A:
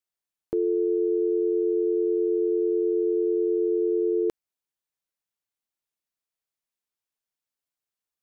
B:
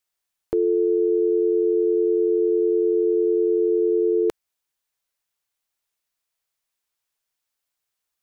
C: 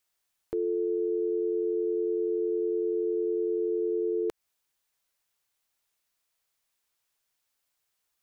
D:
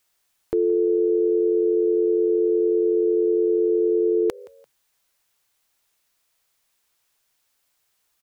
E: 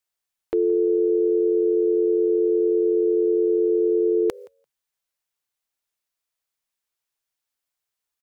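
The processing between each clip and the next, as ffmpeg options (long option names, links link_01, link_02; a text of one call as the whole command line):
ffmpeg -i in.wav -af "equalizer=frequency=220:width_type=o:width=2.2:gain=-7,volume=8.5dB" out.wav
ffmpeg -i in.wav -af "alimiter=level_in=1dB:limit=-24dB:level=0:latency=1:release=122,volume=-1dB,volume=2.5dB" out.wav
ffmpeg -i in.wav -filter_complex "[0:a]asplit=3[link_01][link_02][link_03];[link_02]adelay=171,afreqshift=55,volume=-22dB[link_04];[link_03]adelay=342,afreqshift=110,volume=-31.4dB[link_05];[link_01][link_04][link_05]amix=inputs=3:normalize=0,volume=8.5dB" out.wav
ffmpeg -i in.wav -af "agate=range=-14dB:threshold=-38dB:ratio=16:detection=peak" out.wav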